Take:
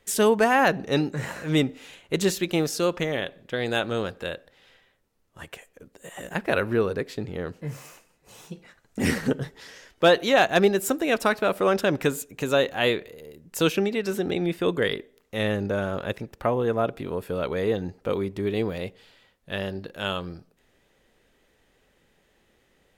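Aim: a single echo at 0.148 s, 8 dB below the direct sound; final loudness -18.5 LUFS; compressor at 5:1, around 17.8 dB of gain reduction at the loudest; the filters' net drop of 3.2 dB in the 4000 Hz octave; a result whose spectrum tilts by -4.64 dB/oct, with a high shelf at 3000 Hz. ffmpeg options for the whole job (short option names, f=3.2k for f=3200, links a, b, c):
-af "highshelf=f=3k:g=4.5,equalizer=f=4k:t=o:g=-7.5,acompressor=threshold=-35dB:ratio=5,aecho=1:1:148:0.398,volume=19.5dB"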